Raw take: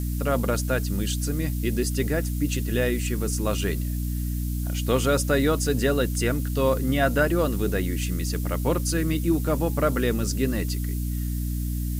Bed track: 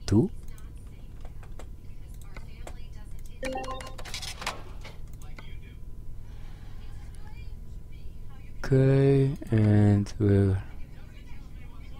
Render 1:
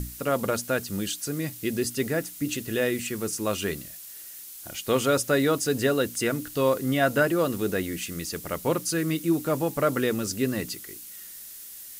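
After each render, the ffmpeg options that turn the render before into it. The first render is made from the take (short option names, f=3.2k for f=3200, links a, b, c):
-af "bandreject=f=60:t=h:w=6,bandreject=f=120:t=h:w=6,bandreject=f=180:t=h:w=6,bandreject=f=240:t=h:w=6,bandreject=f=300:t=h:w=6"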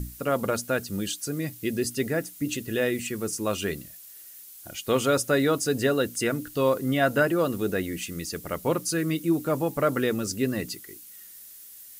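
-af "afftdn=nr=6:nf=-43"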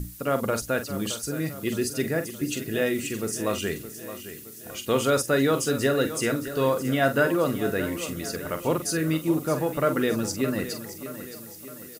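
-filter_complex "[0:a]asplit=2[a][b];[b]adelay=44,volume=-9.5dB[c];[a][c]amix=inputs=2:normalize=0,aecho=1:1:618|1236|1854|2472|3090:0.237|0.119|0.0593|0.0296|0.0148"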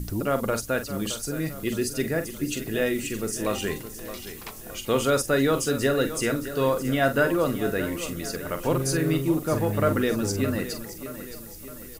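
-filter_complex "[1:a]volume=-8dB[a];[0:a][a]amix=inputs=2:normalize=0"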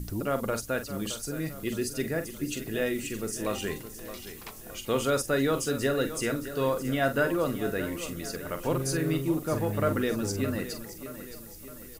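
-af "volume=-4dB"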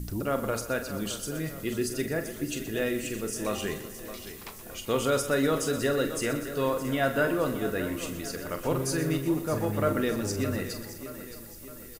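-filter_complex "[0:a]asplit=2[a][b];[b]adelay=33,volume=-14dB[c];[a][c]amix=inputs=2:normalize=0,aecho=1:1:123|246|369|492|615|738:0.224|0.125|0.0702|0.0393|0.022|0.0123"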